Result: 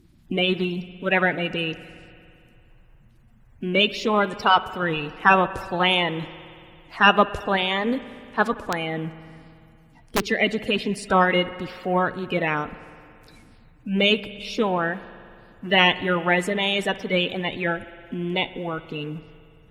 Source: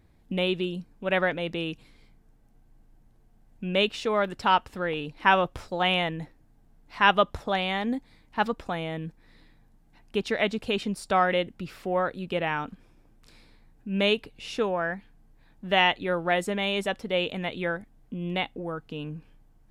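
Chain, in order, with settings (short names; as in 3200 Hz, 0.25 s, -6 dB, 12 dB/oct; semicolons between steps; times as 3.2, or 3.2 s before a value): bin magnitudes rounded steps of 30 dB; spring tank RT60 2.5 s, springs 56 ms, chirp 55 ms, DRR 15 dB; 8.56–10.21 wrapped overs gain 18.5 dB; gain +5 dB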